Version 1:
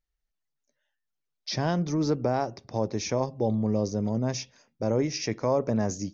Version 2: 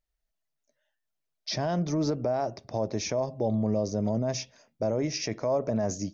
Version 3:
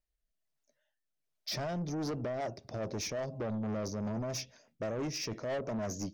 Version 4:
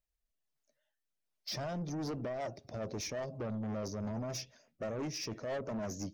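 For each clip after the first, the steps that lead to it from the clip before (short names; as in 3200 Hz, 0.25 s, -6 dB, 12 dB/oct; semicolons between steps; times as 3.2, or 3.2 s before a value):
bell 640 Hz +10 dB 0.24 oct; limiter -19 dBFS, peak gain reduction 8 dB
rotary speaker horn 1.2 Hz, later 6 Hz, at 1.89; soft clip -32 dBFS, distortion -9 dB
bin magnitudes rounded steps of 15 dB; gain -2 dB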